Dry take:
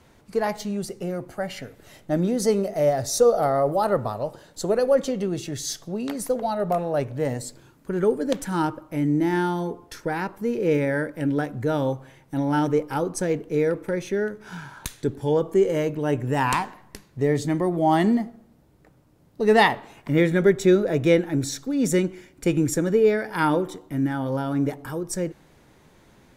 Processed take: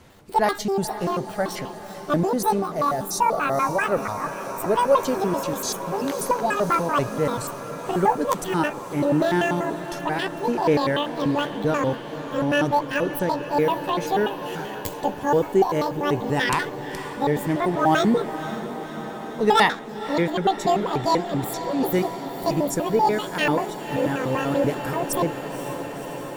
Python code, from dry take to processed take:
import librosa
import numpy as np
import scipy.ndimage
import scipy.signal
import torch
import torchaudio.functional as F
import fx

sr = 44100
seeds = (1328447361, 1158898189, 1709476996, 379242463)

y = fx.pitch_trill(x, sr, semitones=11.5, every_ms=97)
y = fx.echo_diffused(y, sr, ms=527, feedback_pct=75, wet_db=-12.5)
y = fx.rider(y, sr, range_db=5, speed_s=2.0)